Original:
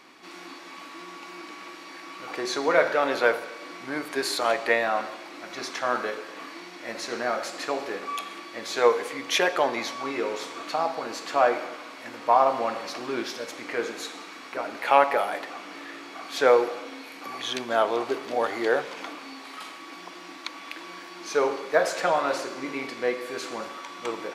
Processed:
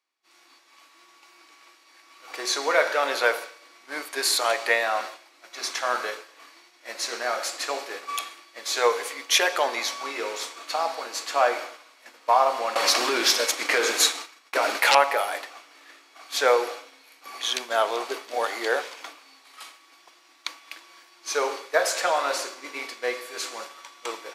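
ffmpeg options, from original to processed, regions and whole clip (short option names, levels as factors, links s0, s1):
-filter_complex "[0:a]asettb=1/sr,asplit=3[s0][s1][s2];[s0]atrim=end=12.754[s3];[s1]atrim=start=12.75:end=14.95,asetpts=PTS-STARTPTS,afade=t=in:d=0.004:c=qsin,afade=t=out:st=2.196:d=0.004:c=qsin,agate=range=0.0224:threshold=0.0251:ratio=3:release=100:detection=peak,aeval=exprs='0.562*sin(PI/2*4.47*val(0)/0.562)':c=same,acompressor=threshold=0.112:ratio=4:attack=3.2:release=140:knee=1:detection=peak[s4];[s2]atrim=start=14.946[s5];[s3][s4]acrossfade=d=0.004:c1=hsin:c2=qsin[s6];[s6][s5]acrossfade=d=0.004:c1=qsin:c2=hsin,highpass=470,highshelf=f=4000:g=11,agate=range=0.0224:threshold=0.0316:ratio=3:detection=peak"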